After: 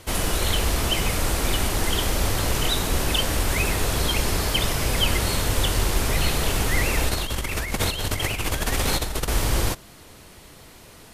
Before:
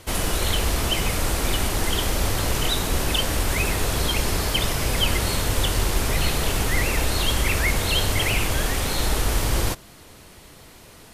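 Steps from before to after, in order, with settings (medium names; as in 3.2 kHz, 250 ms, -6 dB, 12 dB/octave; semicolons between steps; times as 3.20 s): 7.09–9.28 s: compressor with a negative ratio -24 dBFS, ratio -0.5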